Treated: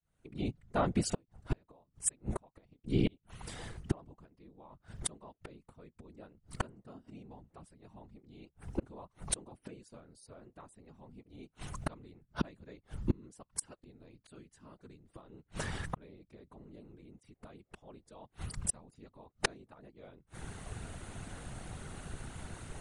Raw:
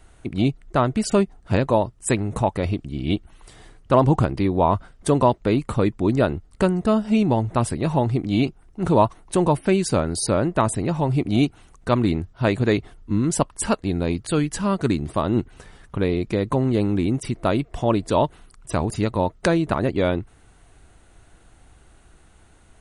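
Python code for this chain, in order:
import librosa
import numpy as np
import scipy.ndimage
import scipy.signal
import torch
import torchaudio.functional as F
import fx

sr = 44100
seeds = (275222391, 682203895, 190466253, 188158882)

y = fx.fade_in_head(x, sr, length_s=6.78)
y = fx.gate_flip(y, sr, shuts_db=-23.0, range_db=-41)
y = fx.whisperise(y, sr, seeds[0])
y = y * librosa.db_to_amplitude(7.5)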